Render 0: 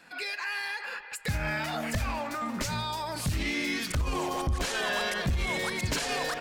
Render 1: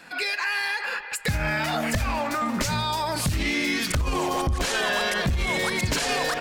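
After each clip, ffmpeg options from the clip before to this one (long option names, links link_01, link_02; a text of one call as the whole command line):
ffmpeg -i in.wav -af "acompressor=threshold=-29dB:ratio=6,volume=8dB" out.wav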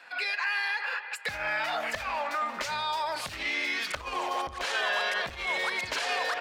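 ffmpeg -i in.wav -filter_complex "[0:a]acrossover=split=490 4600:gain=0.0794 1 0.251[link_01][link_02][link_03];[link_01][link_02][link_03]amix=inputs=3:normalize=0,volume=-2.5dB" out.wav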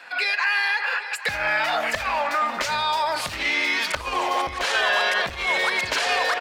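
ffmpeg -i in.wav -af "aecho=1:1:802:0.158,volume=7.5dB" out.wav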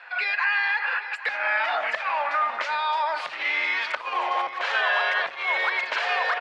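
ffmpeg -i in.wav -af "highpass=670,lowpass=2600" out.wav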